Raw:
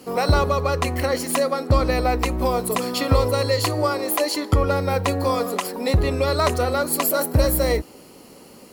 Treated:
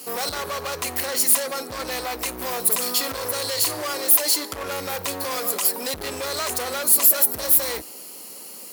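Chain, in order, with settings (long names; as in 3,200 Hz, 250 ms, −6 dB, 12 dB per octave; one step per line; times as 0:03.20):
brickwall limiter −14.5 dBFS, peak gain reduction 8 dB
gain into a clipping stage and back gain 24.5 dB
RIAA equalisation recording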